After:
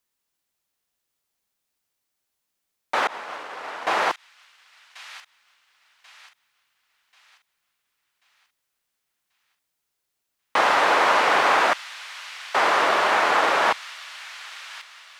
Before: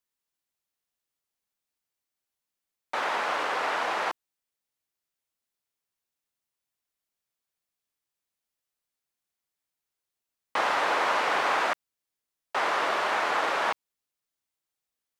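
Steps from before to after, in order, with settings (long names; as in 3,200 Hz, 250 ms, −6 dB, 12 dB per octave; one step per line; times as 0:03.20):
0:03.07–0:03.87: downward expander −18 dBFS
delay with a high-pass on its return 1,087 ms, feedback 40%, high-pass 2,900 Hz, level −8.5 dB
level +7 dB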